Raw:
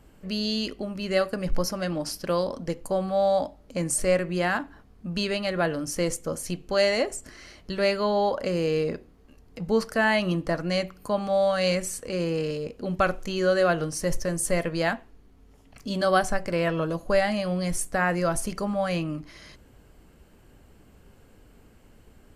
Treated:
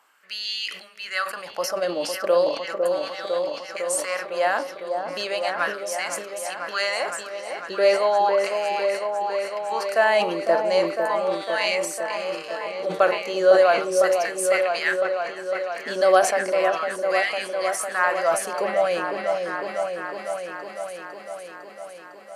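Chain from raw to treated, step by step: LFO high-pass sine 0.36 Hz 450–2200 Hz; delay with an opening low-pass 504 ms, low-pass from 750 Hz, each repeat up 1 oct, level -3 dB; decay stretcher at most 95 dB/s

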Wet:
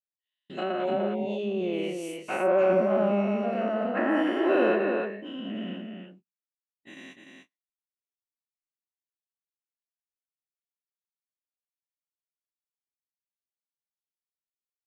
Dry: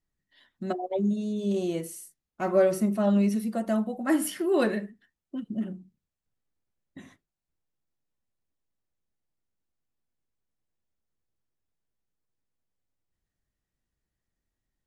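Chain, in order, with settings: every event in the spectrogram widened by 240 ms; low-pass that closes with the level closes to 1.3 kHz, closed at -19 dBFS; high-pass 270 Hz 12 dB/octave; gate -44 dBFS, range -37 dB; peaking EQ 2.7 kHz +14.5 dB 0.59 oct; on a send: delay 297 ms -5 dB; on the sum: trim -4 dB

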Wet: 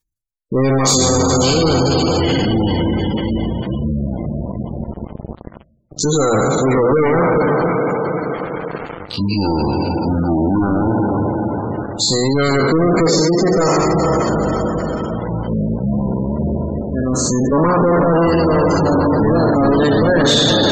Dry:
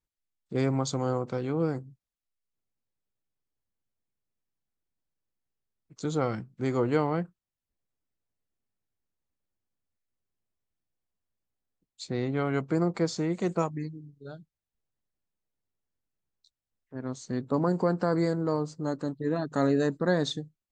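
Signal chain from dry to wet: spectral sustain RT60 1.85 s; ever faster or slower copies 136 ms, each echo -7 st, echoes 2, each echo -6 dB; treble shelf 3.9 kHz +9.5 dB; hum notches 60/120/180/240/300/360 Hz; on a send: echo that smears into a reverb 465 ms, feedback 47%, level -7 dB; on the sum: waveshaping leveller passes 5; spectral gate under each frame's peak -20 dB strong; reverse; upward compressor, threshold -17 dBFS; reverse

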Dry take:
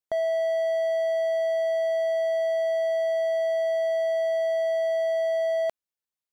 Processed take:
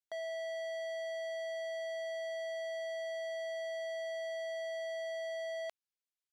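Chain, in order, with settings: band-pass filter 4.2 kHz, Q 0.53; trim -4 dB

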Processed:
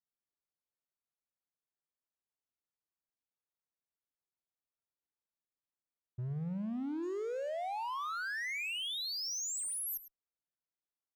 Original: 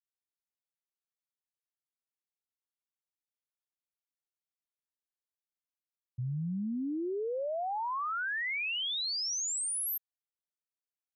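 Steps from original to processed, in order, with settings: local Wiener filter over 15 samples; 7.02–7.48 s: whistle 6.7 kHz -62 dBFS; in parallel at -8 dB: wavefolder -40 dBFS; on the sum: Chebyshev shaper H 8 -31 dB, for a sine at -31.5 dBFS; echo from a far wall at 18 m, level -13 dB; trim -3 dB

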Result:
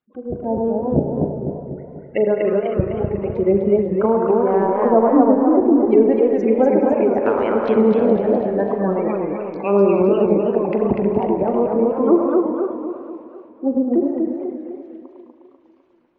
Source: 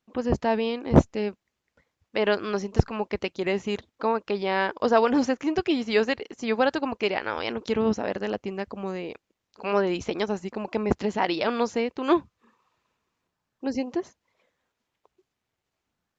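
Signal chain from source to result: spectral gate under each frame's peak -15 dB strong; low-pass that closes with the level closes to 570 Hz, closed at -23.5 dBFS; bass shelf 80 Hz -10 dB; level rider gain up to 14.5 dB; transient shaper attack -2 dB, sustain -7 dB; distance through air 140 m; repeats whose band climbs or falls 104 ms, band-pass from 840 Hz, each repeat 0.7 oct, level -3.5 dB; spring tank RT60 2.1 s, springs 35 ms, chirp 30 ms, DRR 6 dB; modulated delay 249 ms, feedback 51%, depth 172 cents, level -3 dB; trim -2 dB

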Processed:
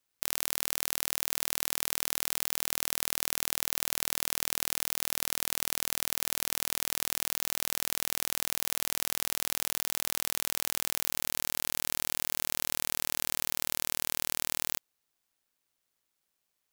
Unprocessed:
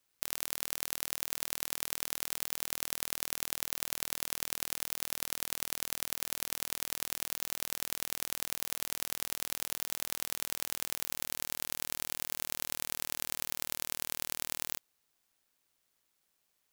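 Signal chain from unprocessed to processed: 9.67–11.91 s: compressor with a negative ratio -38 dBFS; waveshaping leveller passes 3; trim +2.5 dB

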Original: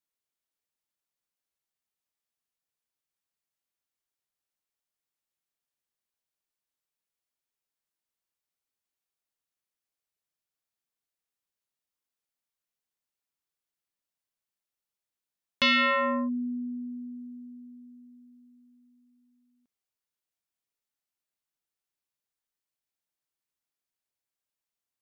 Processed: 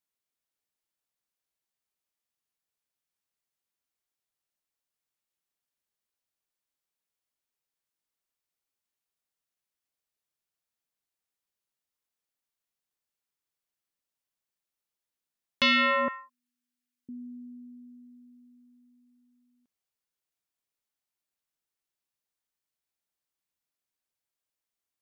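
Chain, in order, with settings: 16.08–17.09 s: high-pass 1.3 kHz 24 dB/octave

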